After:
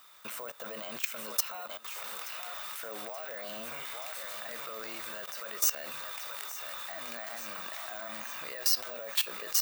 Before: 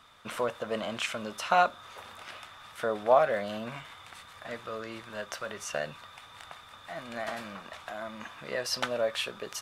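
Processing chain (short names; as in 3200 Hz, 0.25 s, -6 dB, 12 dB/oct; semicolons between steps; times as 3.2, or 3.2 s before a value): bell 3300 Hz -4.5 dB 0.31 oct; compressor 2:1, threshold -40 dBFS, peak gain reduction 13 dB; limiter -29.5 dBFS, peak gain reduction 9 dB; notches 50/100/150/200/250 Hz; on a send: thinning echo 0.878 s, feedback 52%, high-pass 480 Hz, level -8 dB; on the sum: careless resampling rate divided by 2×, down filtered, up hold; RIAA curve recording; level quantiser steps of 16 dB; gain +7.5 dB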